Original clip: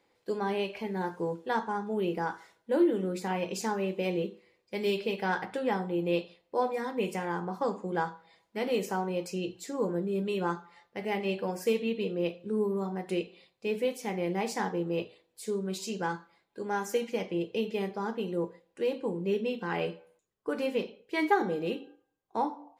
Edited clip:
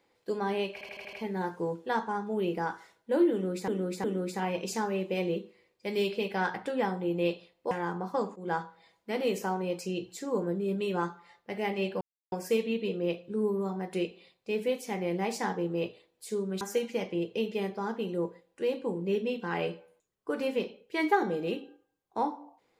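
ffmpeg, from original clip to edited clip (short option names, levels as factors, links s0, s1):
-filter_complex "[0:a]asplit=12[s0][s1][s2][s3][s4][s5][s6][s7][s8][s9][s10][s11];[s0]atrim=end=0.812[s12];[s1]atrim=start=0.728:end=0.812[s13];[s2]atrim=start=0.728:end=0.812[s14];[s3]atrim=start=0.728:end=0.812[s15];[s4]atrim=start=0.728:end=0.812[s16];[s5]atrim=start=0.728:end=3.282[s17];[s6]atrim=start=2.918:end=3.282[s18];[s7]atrim=start=2.918:end=6.592[s19];[s8]atrim=start=7.178:end=7.83,asetpts=PTS-STARTPTS,afade=t=out:st=0.648:d=0.004:c=hsin:silence=0.149624[s20];[s9]atrim=start=7.83:end=11.48,asetpts=PTS-STARTPTS,afade=t=in:d=0.25:c=qsin:silence=0.149624,afade=t=out:st=3.646:d=0.004:c=hsin,apad=pad_dur=0.31[s21];[s10]atrim=start=11.48:end=15.772,asetpts=PTS-STARTPTS,afade=t=in:d=0.004:c=hsin[s22];[s11]atrim=start=16.798[s23];[s12][s13]acrossfade=d=0.004:c1=hsin:c2=hsin[s24];[s24][s14]acrossfade=d=0.004:c1=hsin:c2=hsin[s25];[s25][s15]acrossfade=d=0.004:c1=hsin:c2=hsin[s26];[s26][s16]acrossfade=d=0.004:c1=hsin:c2=hsin[s27];[s27][s17]acrossfade=d=0.004:c1=hsin:c2=hsin[s28];[s28][s18]acrossfade=d=0.004:c1=hsin:c2=hsin[s29];[s29][s19]acrossfade=d=0.004:c1=hsin:c2=hsin[s30];[s20][s21][s22]concat=n=3:v=0:a=1[s31];[s30][s31]acrossfade=d=0.004:c1=hsin:c2=hsin[s32];[s32][s23]acrossfade=d=0.004:c1=hsin:c2=hsin"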